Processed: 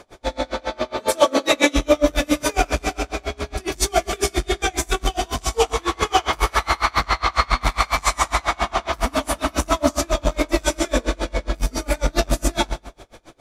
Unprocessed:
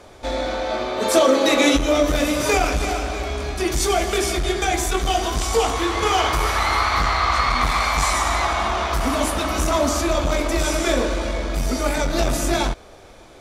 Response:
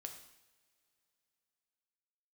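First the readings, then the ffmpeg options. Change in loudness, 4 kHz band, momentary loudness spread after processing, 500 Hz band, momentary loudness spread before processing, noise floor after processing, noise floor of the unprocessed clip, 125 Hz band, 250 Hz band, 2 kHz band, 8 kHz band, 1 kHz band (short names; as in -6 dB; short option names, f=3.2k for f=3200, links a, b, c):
-1.5 dB, -1.5 dB, 8 LU, -1.5 dB, 8 LU, -49 dBFS, -44 dBFS, -2.0 dB, -2.0 dB, -1.5 dB, -1.0 dB, -1.5 dB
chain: -filter_complex "[0:a]asplit=2[a][b];[1:a]atrim=start_sample=2205[c];[b][c]afir=irnorm=-1:irlink=0,volume=8dB[d];[a][d]amix=inputs=2:normalize=0,aeval=exprs='val(0)*pow(10,-31*(0.5-0.5*cos(2*PI*7.3*n/s))/20)':c=same,volume=-2.5dB"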